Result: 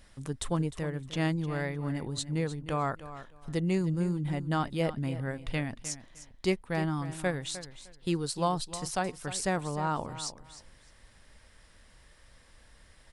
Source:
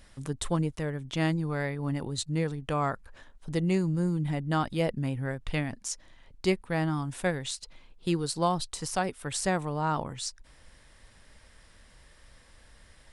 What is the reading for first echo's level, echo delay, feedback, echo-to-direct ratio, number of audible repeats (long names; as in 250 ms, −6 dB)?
−14.0 dB, 306 ms, 20%, −14.0 dB, 2